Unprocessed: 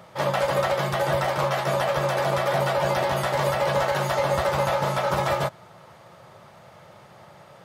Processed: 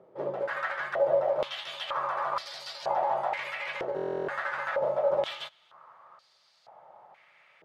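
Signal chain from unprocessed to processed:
buffer that repeats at 0:03.95, samples 1,024, times 13
band-pass on a step sequencer 2.1 Hz 400–4,600 Hz
level +2.5 dB

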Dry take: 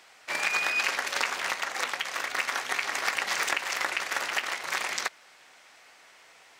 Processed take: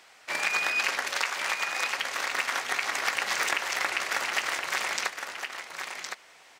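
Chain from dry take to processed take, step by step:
0:01.16–0:01.98: high-pass filter 550 Hz 6 dB per octave
on a send: single-tap delay 1,063 ms −6.5 dB

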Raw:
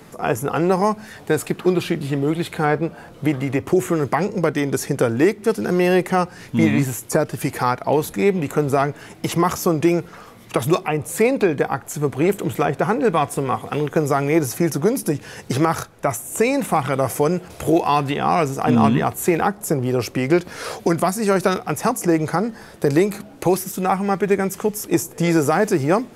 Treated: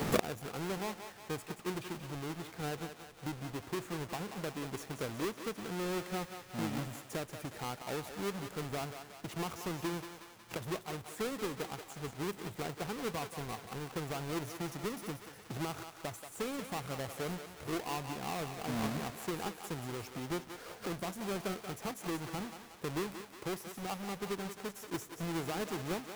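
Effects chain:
each half-wave held at its own peak
feedback echo with a high-pass in the loop 182 ms, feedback 60%, high-pass 490 Hz, level −7.5 dB
gate with flip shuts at −20 dBFS, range −29 dB
level +4.5 dB

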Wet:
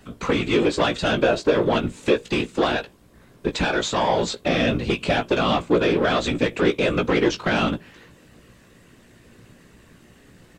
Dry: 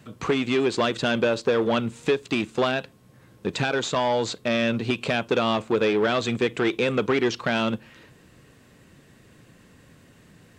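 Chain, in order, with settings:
random phases in short frames
double-tracking delay 17 ms −6.5 dB
level +1.5 dB

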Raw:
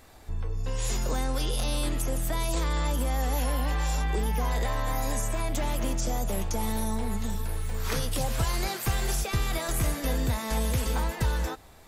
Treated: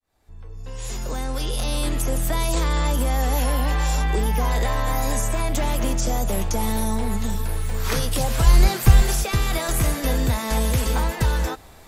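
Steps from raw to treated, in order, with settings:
fade in at the beginning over 2.16 s
0:08.44–0:09.02: low-shelf EQ 200 Hz +11.5 dB
level +6 dB

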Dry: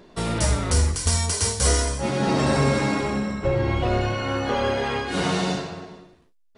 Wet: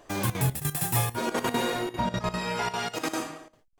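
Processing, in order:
gate pattern "xxxxxx.xxx.x.x.x" 174 BPM −12 dB
wrong playback speed 45 rpm record played at 78 rpm
level −5 dB

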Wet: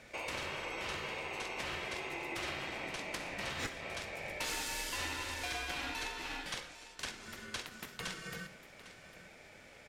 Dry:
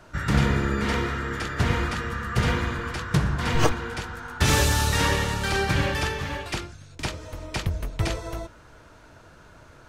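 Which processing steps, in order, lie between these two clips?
high-pass filter 770 Hz 12 dB per octave
downward compressor 3 to 1, threshold −38 dBFS, peak gain reduction 13 dB
ring modulation 850 Hz
single-tap delay 803 ms −15.5 dB
convolution reverb RT60 0.50 s, pre-delay 44 ms, DRR 12 dB
level +1 dB

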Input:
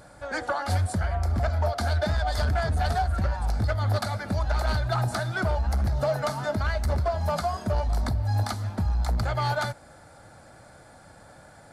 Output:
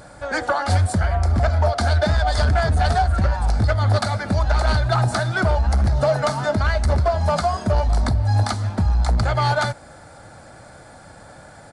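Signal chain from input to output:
downsampling to 22,050 Hz
level +7 dB

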